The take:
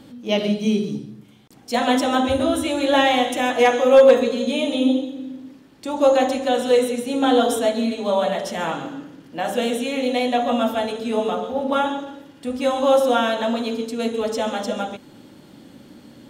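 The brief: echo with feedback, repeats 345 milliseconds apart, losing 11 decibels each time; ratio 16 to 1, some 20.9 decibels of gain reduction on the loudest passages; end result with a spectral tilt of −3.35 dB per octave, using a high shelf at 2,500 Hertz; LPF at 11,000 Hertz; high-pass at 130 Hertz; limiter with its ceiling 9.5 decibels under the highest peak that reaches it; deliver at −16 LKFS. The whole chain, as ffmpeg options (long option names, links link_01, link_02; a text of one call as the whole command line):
ffmpeg -i in.wav -af "highpass=130,lowpass=11000,highshelf=frequency=2500:gain=8,acompressor=threshold=-28dB:ratio=16,alimiter=level_in=2dB:limit=-24dB:level=0:latency=1,volume=-2dB,aecho=1:1:345|690|1035:0.282|0.0789|0.0221,volume=19dB" out.wav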